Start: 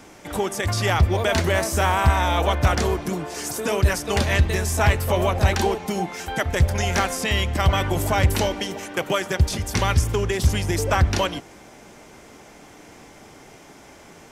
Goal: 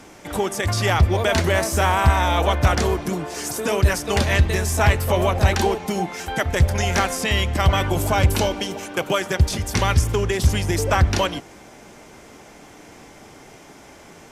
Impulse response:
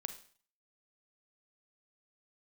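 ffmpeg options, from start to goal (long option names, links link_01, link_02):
-filter_complex "[0:a]asettb=1/sr,asplit=3[link_01][link_02][link_03];[link_01]atrim=end=7.864[link_04];[link_02]atrim=start=7.86:end=9.18,asetpts=PTS-STARTPTS,afade=type=in:duration=0.004:curve=qsin,afade=type=out:start_time=1.316:duration=0.004:curve=qsin,bandreject=frequency=1900:width=8.2[link_05];[link_03]atrim=start=9.176[link_06];[link_04][link_05]acrossfade=duration=0.004:curve1=hsin:curve2=qsin[link_07];[link_07][link_06]acrossfade=duration=0.004:curve1=qsin:curve2=hsin,volume=1.5dB" -ar 32000 -c:a libvorbis -b:a 128k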